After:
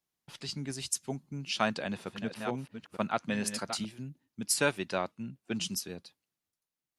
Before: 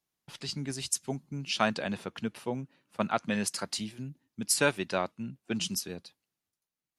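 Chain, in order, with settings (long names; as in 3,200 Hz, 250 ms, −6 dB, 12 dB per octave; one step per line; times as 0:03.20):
0:01.59–0:03.85: delay that plays each chunk backwards 461 ms, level −9 dB
level −2 dB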